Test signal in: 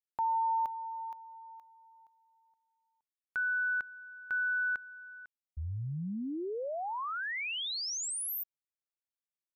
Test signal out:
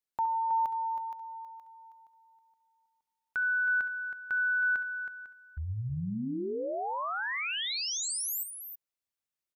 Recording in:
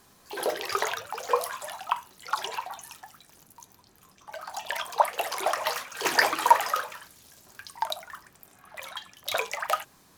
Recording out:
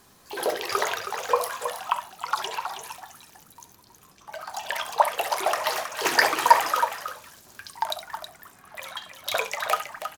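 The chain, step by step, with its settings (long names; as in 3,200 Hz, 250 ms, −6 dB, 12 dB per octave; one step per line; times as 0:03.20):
multi-tap delay 67/320 ms −12.5/−9 dB
level +2 dB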